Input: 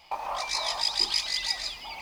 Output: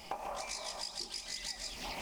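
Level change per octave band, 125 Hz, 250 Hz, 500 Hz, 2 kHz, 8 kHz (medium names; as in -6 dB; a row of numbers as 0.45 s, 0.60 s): no reading, -1.0 dB, -5.0 dB, -11.0 dB, -6.5 dB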